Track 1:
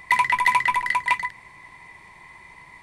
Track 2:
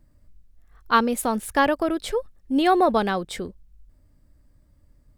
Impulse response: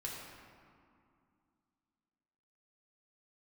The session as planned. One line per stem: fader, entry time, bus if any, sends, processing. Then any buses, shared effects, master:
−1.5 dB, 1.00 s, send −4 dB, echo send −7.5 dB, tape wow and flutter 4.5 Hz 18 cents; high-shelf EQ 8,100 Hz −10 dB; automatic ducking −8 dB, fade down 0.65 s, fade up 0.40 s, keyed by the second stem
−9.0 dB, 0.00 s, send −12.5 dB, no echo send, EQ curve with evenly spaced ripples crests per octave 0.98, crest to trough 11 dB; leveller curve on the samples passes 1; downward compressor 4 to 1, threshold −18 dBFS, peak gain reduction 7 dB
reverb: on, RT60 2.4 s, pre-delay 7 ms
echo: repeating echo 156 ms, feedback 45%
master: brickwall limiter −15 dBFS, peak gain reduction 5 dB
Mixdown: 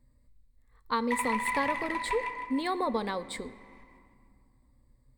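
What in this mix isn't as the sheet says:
stem 1 −1.5 dB → −11.0 dB
stem 2: missing leveller curve on the samples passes 1

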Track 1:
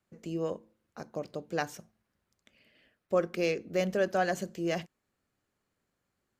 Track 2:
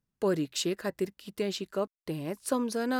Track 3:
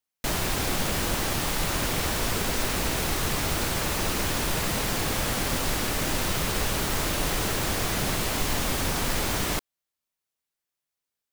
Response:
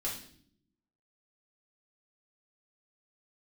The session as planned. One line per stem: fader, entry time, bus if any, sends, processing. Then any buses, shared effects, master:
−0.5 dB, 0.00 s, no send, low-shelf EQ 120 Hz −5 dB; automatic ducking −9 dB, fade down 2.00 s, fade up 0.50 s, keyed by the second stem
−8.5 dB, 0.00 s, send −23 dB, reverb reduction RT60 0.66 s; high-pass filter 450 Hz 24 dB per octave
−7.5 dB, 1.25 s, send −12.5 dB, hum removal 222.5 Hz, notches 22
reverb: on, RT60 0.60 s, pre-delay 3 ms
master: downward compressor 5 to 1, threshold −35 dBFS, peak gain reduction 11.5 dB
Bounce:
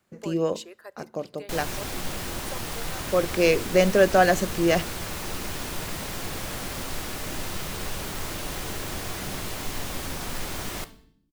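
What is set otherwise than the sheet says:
stem 1 −0.5 dB → +10.5 dB
master: missing downward compressor 5 to 1, threshold −35 dBFS, peak gain reduction 11.5 dB

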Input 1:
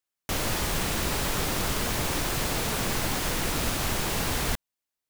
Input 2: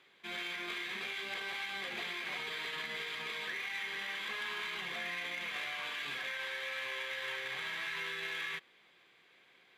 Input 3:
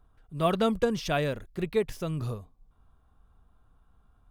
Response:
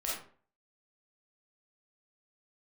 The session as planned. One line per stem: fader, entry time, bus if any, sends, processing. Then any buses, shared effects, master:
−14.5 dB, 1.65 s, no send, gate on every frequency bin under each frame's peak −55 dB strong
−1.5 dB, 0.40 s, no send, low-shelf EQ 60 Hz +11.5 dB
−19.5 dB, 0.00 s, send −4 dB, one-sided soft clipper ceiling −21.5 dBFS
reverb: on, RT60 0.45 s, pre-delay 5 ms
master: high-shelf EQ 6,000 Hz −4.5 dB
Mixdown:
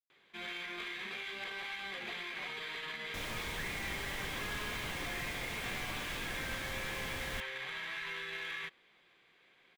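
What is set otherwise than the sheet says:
stem 1: entry 1.65 s → 2.85 s
stem 2: entry 0.40 s → 0.10 s
stem 3: muted
reverb: off

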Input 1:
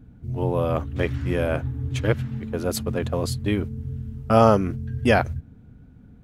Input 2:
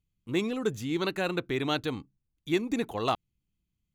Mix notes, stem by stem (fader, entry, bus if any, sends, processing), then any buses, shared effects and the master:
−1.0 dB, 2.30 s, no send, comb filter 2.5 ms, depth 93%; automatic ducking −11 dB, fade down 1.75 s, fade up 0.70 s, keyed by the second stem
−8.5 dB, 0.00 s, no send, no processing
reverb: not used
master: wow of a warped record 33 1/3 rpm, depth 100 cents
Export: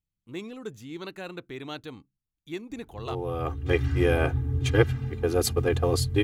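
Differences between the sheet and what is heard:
stem 1: entry 2.30 s → 2.70 s
master: missing wow of a warped record 33 1/3 rpm, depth 100 cents

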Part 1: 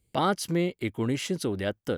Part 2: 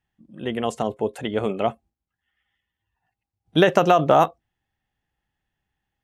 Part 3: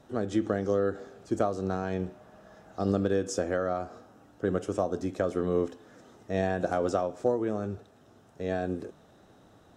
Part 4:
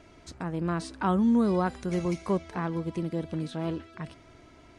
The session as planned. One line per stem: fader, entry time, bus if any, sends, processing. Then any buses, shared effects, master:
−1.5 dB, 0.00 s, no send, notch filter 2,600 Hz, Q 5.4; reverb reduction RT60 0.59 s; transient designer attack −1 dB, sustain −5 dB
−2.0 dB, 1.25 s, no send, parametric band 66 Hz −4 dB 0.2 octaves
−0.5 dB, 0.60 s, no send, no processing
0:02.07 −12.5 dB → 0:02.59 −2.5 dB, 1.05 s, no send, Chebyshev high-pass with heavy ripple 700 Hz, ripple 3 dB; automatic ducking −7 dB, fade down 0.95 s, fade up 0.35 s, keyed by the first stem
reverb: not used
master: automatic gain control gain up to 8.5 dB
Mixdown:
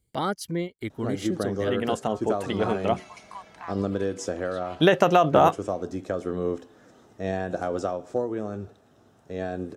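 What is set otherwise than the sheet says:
stem 3: entry 0.60 s → 0.90 s
master: missing automatic gain control gain up to 8.5 dB

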